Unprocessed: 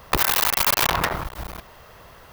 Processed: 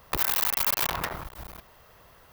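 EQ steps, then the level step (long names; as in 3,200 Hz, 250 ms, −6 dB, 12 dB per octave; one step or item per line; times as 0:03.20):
high-shelf EQ 11,000 Hz +6.5 dB
−9.0 dB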